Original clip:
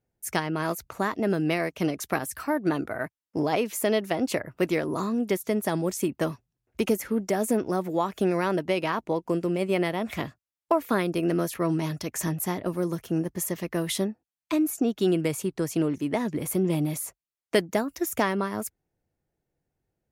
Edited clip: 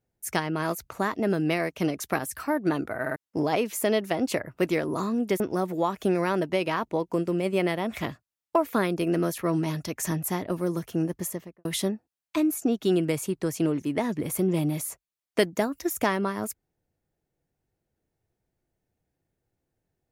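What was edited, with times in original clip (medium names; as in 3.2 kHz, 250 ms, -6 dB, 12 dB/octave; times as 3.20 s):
3.01 s: stutter in place 0.05 s, 3 plays
5.40–7.56 s: delete
13.33–13.81 s: studio fade out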